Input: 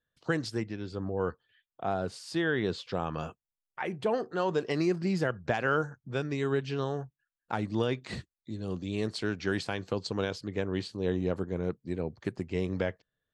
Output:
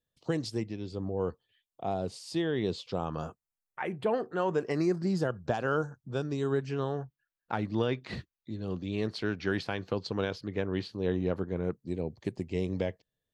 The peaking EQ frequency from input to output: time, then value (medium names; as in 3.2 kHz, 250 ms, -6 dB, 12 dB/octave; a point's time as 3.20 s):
peaking EQ -13 dB 0.68 oct
2.80 s 1.5 kHz
4.09 s 6.3 kHz
5.25 s 2.1 kHz
6.49 s 2.1 kHz
6.99 s 8.1 kHz
11.54 s 8.1 kHz
11.95 s 1.4 kHz